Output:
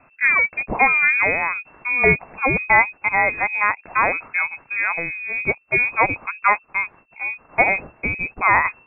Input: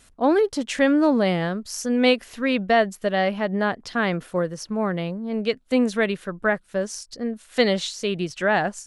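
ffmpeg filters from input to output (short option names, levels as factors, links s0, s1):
-af "crystalizer=i=10:c=0,lowpass=f=2300:t=q:w=0.5098,lowpass=f=2300:t=q:w=0.6013,lowpass=f=2300:t=q:w=0.9,lowpass=f=2300:t=q:w=2.563,afreqshift=-2700,lowshelf=f=320:g=6,volume=0.891"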